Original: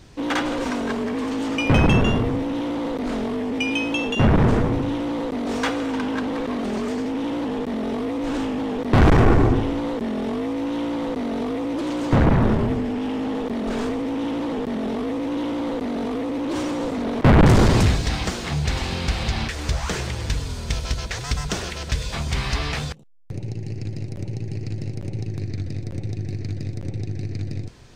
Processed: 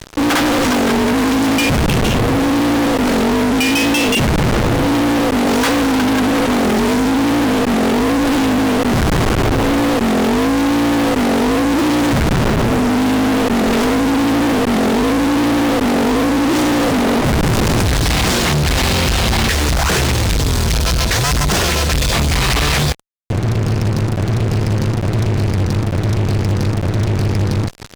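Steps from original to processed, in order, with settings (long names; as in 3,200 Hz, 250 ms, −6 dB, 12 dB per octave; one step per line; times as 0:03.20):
fuzz pedal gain 40 dB, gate −42 dBFS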